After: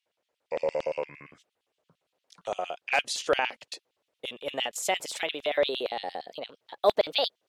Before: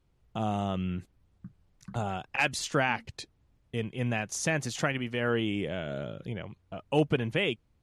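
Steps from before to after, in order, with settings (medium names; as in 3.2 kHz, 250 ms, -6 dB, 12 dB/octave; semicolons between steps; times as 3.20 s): gliding tape speed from 67% -> 142%; LFO high-pass square 8.7 Hz 520–3100 Hz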